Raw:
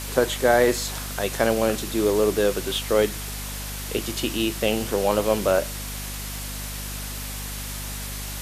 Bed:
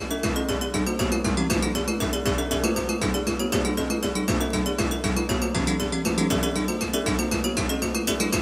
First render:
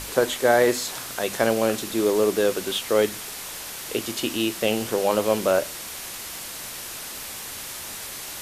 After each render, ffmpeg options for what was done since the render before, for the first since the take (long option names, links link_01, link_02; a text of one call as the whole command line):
ffmpeg -i in.wav -af "bandreject=frequency=50:width_type=h:width=6,bandreject=frequency=100:width_type=h:width=6,bandreject=frequency=150:width_type=h:width=6,bandreject=frequency=200:width_type=h:width=6,bandreject=frequency=250:width_type=h:width=6" out.wav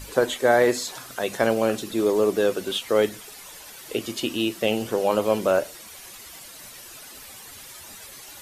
ffmpeg -i in.wav -af "afftdn=noise_reduction=11:noise_floor=-36" out.wav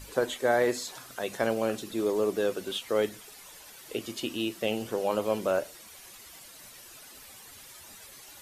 ffmpeg -i in.wav -af "volume=-6.5dB" out.wav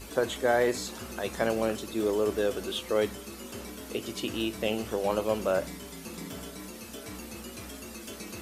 ffmpeg -i in.wav -i bed.wav -filter_complex "[1:a]volume=-18dB[link_01];[0:a][link_01]amix=inputs=2:normalize=0" out.wav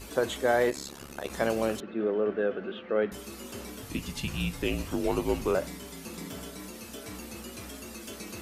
ffmpeg -i in.wav -filter_complex "[0:a]asplit=3[link_01][link_02][link_03];[link_01]afade=type=out:start_time=0.69:duration=0.02[link_04];[link_02]tremolo=f=70:d=0.974,afade=type=in:start_time=0.69:duration=0.02,afade=type=out:start_time=1.29:duration=0.02[link_05];[link_03]afade=type=in:start_time=1.29:duration=0.02[link_06];[link_04][link_05][link_06]amix=inputs=3:normalize=0,asettb=1/sr,asplit=3[link_07][link_08][link_09];[link_07]atrim=end=1.804[link_10];[link_08]atrim=start=1.8:end=3.12,asetpts=PTS-STARTPTS,afade=type=in:duration=0.004:curve=qsin,afade=type=out:start_time=1.316:duration=0.004:curve=qsin,highpass=180,equalizer=frequency=200:width_type=q:width=4:gain=5,equalizer=frequency=300:width_type=q:width=4:gain=-3,equalizer=frequency=980:width_type=q:width=4:gain=-8,equalizer=frequency=1500:width_type=q:width=4:gain=4,equalizer=frequency=2200:width_type=q:width=4:gain=-4,lowpass=frequency=2400:width=0.5412,lowpass=frequency=2400:width=1.3066[link_11];[link_09]atrim=start=3.116[link_12];[link_10][link_11]acrossfade=duration=0.004:curve1=hsin:curve2=qsin[link_13];[link_13][link_12]acrossfade=duration=0.004:curve1=qsin:curve2=hsin,asettb=1/sr,asplit=3[link_14][link_15][link_16];[link_14]atrim=end=3.824[link_17];[link_15]atrim=start=3.82:end=5.55,asetpts=PTS-STARTPTS,afade=type=in:duration=0.004:curve=qsin,afade=type=out:start_time=1.726:duration=0.004:curve=qsin,afreqshift=-160[link_18];[link_16]atrim=start=5.546[link_19];[link_17][link_18]acrossfade=duration=0.004:curve1=hsin:curve2=qsin[link_20];[link_20][link_19]acrossfade=duration=0.004:curve1=qsin:curve2=hsin" out.wav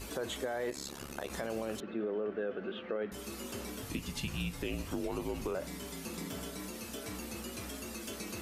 ffmpeg -i in.wav -af "alimiter=limit=-21dB:level=0:latency=1:release=31,acompressor=threshold=-37dB:ratio=2" out.wav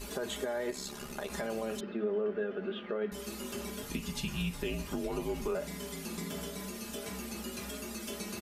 ffmpeg -i in.wav -af "aecho=1:1:4.9:0.65,bandreject=frequency=220.3:width_type=h:width=4,bandreject=frequency=440.6:width_type=h:width=4,bandreject=frequency=660.9:width_type=h:width=4,bandreject=frequency=881.2:width_type=h:width=4,bandreject=frequency=1101.5:width_type=h:width=4,bandreject=frequency=1321.8:width_type=h:width=4,bandreject=frequency=1542.1:width_type=h:width=4,bandreject=frequency=1762.4:width_type=h:width=4,bandreject=frequency=1982.7:width_type=h:width=4,bandreject=frequency=2203:width_type=h:width=4,bandreject=frequency=2423.3:width_type=h:width=4,bandreject=frequency=2643.6:width_type=h:width=4,bandreject=frequency=2863.9:width_type=h:width=4,bandreject=frequency=3084.2:width_type=h:width=4,bandreject=frequency=3304.5:width_type=h:width=4,bandreject=frequency=3524.8:width_type=h:width=4,bandreject=frequency=3745.1:width_type=h:width=4,bandreject=frequency=3965.4:width_type=h:width=4,bandreject=frequency=4185.7:width_type=h:width=4,bandreject=frequency=4406:width_type=h:width=4,bandreject=frequency=4626.3:width_type=h:width=4,bandreject=frequency=4846.6:width_type=h:width=4,bandreject=frequency=5066.9:width_type=h:width=4,bandreject=frequency=5287.2:width_type=h:width=4" out.wav